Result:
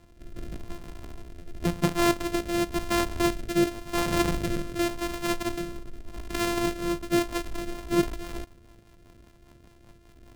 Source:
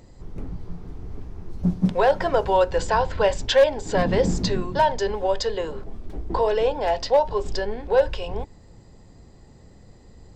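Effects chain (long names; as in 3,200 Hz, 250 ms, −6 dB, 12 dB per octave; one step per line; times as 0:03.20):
samples sorted by size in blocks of 128 samples
rotating-speaker cabinet horn 0.9 Hz, later 5 Hz, at 0:07.24
level −4 dB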